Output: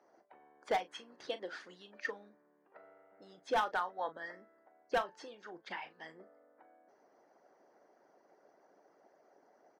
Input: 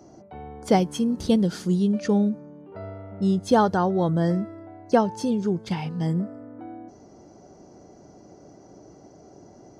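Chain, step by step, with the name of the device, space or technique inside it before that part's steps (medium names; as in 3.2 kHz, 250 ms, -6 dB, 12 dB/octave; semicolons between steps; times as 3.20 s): harmonic-percussive split harmonic -17 dB; megaphone (band-pass 620–3000 Hz; peaking EQ 1.8 kHz +9 dB 0.53 oct; hard clipper -20.5 dBFS, distortion -11 dB; doubling 38 ms -13 dB); trim -5.5 dB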